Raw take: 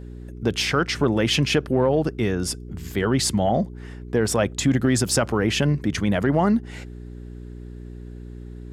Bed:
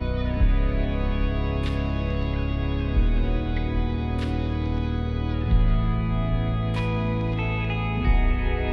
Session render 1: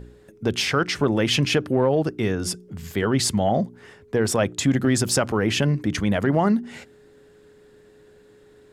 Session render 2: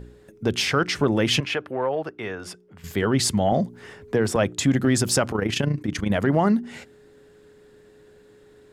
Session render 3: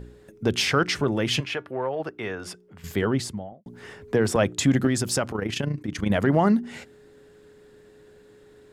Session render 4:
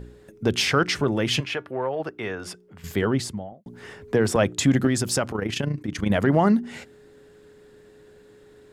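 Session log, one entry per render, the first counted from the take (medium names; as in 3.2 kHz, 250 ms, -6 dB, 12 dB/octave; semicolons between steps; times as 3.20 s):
de-hum 60 Hz, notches 6
1.40–2.84 s: three-band isolator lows -14 dB, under 510 Hz, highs -13 dB, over 3.1 kHz; 3.52–4.36 s: three bands compressed up and down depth 40%; 5.32–6.10 s: AM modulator 28 Hz, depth 50%
1.01–2.00 s: feedback comb 130 Hz, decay 0.15 s, harmonics odd, mix 40%; 2.86–3.66 s: studio fade out; 4.87–6.00 s: gain -4 dB
trim +1 dB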